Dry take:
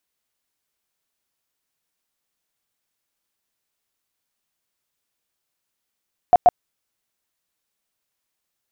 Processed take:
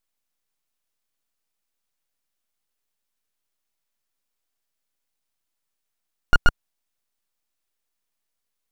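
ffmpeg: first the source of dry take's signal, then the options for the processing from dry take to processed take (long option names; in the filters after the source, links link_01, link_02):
-f lavfi -i "aevalsrc='0.447*sin(2*PI*715*mod(t,0.13))*lt(mod(t,0.13),20/715)':duration=0.26:sample_rate=44100"
-af "lowshelf=frequency=75:gain=10.5,aeval=exprs='abs(val(0))':channel_layout=same"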